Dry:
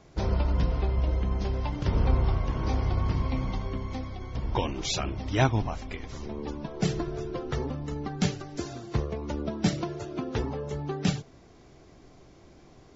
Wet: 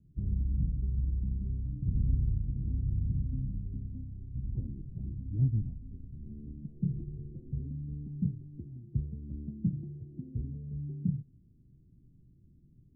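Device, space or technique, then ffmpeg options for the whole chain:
the neighbour's flat through the wall: -af "lowpass=f=230:w=0.5412,lowpass=f=230:w=1.3066,equalizer=f=130:t=o:w=0.77:g=4.5,volume=-5.5dB"

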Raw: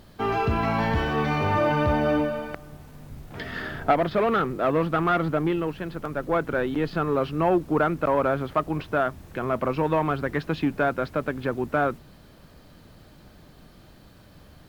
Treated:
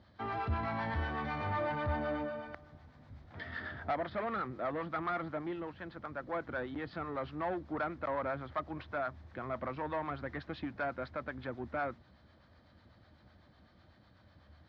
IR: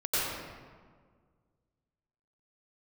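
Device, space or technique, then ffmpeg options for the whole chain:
guitar amplifier with harmonic tremolo: -filter_complex "[0:a]acrossover=split=650[a][b];[a]aeval=exprs='val(0)*(1-0.5/2+0.5/2*cos(2*PI*8*n/s))':c=same[c];[b]aeval=exprs='val(0)*(1-0.5/2-0.5/2*cos(2*PI*8*n/s))':c=same[d];[c][d]amix=inputs=2:normalize=0,asoftclip=type=tanh:threshold=-19.5dB,highpass=79,equalizer=f=79:t=q:w=4:g=9,equalizer=f=160:t=q:w=4:g=-9,equalizer=f=280:t=q:w=4:g=-3,equalizer=f=420:t=q:w=4:g=-9,equalizer=f=1.9k:t=q:w=4:g=3,equalizer=f=2.7k:t=q:w=4:g=-8,lowpass=f=4.4k:w=0.5412,lowpass=f=4.4k:w=1.3066,volume=-7dB"

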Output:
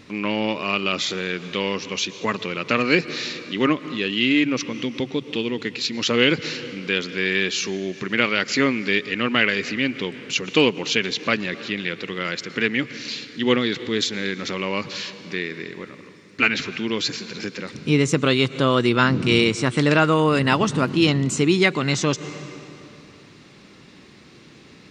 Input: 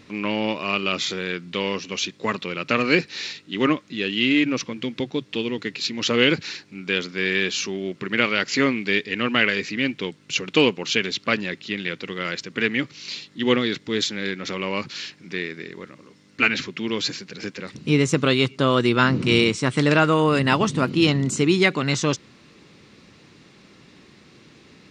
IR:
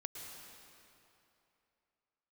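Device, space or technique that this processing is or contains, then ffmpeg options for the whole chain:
ducked reverb: -filter_complex "[0:a]asplit=3[a][b][c];[1:a]atrim=start_sample=2205[d];[b][d]afir=irnorm=-1:irlink=0[e];[c]apad=whole_len=1098343[f];[e][f]sidechaincompress=threshold=-30dB:ratio=8:attack=9.3:release=115,volume=-5.5dB[g];[a][g]amix=inputs=2:normalize=0"

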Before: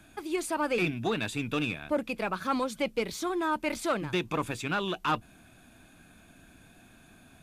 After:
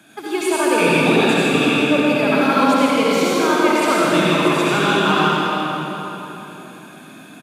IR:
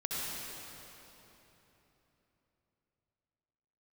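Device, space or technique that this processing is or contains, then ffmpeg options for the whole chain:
PA in a hall: -filter_complex "[0:a]highpass=f=160:w=0.5412,highpass=f=160:w=1.3066,equalizer=f=3.3k:t=o:w=0.21:g=3.5,aecho=1:1:162:0.447[a];[1:a]atrim=start_sample=2205[b];[a][b]afir=irnorm=-1:irlink=0,volume=9dB"

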